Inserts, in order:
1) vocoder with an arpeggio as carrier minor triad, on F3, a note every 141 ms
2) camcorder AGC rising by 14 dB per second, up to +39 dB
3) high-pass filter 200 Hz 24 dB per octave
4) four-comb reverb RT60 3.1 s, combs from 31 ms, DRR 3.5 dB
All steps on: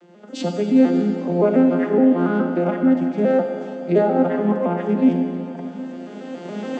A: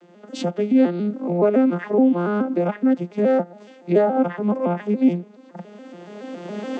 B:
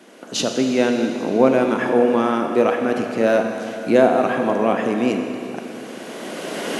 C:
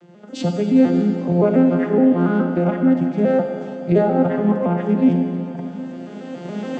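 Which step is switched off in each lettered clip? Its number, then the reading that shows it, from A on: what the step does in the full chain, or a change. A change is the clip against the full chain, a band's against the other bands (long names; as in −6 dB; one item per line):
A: 4, change in integrated loudness −1.5 LU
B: 1, 125 Hz band −10.0 dB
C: 3, 125 Hz band +5.5 dB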